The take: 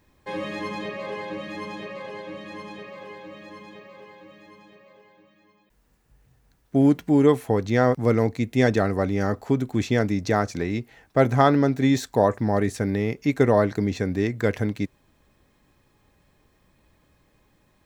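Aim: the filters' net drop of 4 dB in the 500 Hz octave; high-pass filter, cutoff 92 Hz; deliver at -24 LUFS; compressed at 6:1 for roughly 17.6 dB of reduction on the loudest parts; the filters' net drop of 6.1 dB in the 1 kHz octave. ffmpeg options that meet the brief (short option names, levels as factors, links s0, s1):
-af "highpass=92,equalizer=f=500:t=o:g=-3,equalizer=f=1000:t=o:g=-7.5,acompressor=threshold=0.0178:ratio=6,volume=6.31"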